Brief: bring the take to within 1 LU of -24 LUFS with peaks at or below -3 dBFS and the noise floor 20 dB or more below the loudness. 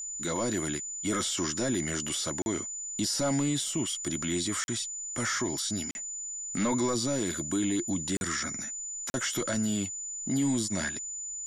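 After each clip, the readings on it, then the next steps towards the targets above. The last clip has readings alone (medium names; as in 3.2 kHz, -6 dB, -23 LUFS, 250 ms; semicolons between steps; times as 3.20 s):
dropouts 5; longest dropout 41 ms; steady tone 7 kHz; tone level -35 dBFS; loudness -30.0 LUFS; peak level -19.0 dBFS; loudness target -24.0 LUFS
-> interpolate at 2.42/4.64/5.91/8.17/9.10 s, 41 ms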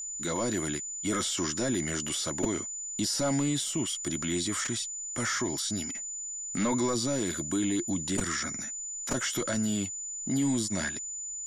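dropouts 0; steady tone 7 kHz; tone level -35 dBFS
-> band-stop 7 kHz, Q 30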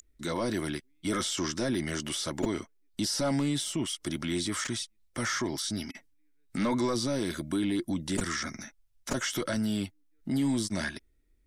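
steady tone not found; loudness -31.5 LUFS; peak level -15.5 dBFS; loudness target -24.0 LUFS
-> trim +7.5 dB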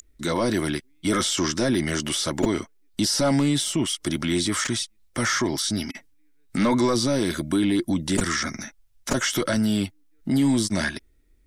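loudness -24.0 LUFS; peak level -8.0 dBFS; noise floor -59 dBFS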